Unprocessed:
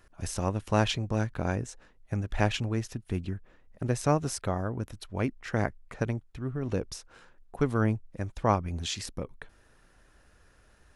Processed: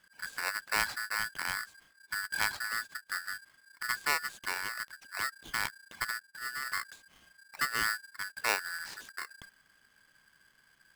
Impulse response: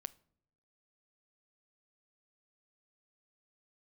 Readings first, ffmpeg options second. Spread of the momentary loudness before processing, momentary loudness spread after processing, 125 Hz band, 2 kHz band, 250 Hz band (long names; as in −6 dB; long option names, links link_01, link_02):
11 LU, 12 LU, −28.5 dB, +8.0 dB, −24.0 dB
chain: -af "aemphasis=mode=reproduction:type=75fm,aeval=exprs='val(0)*sgn(sin(2*PI*1600*n/s))':channel_layout=same,volume=-6.5dB"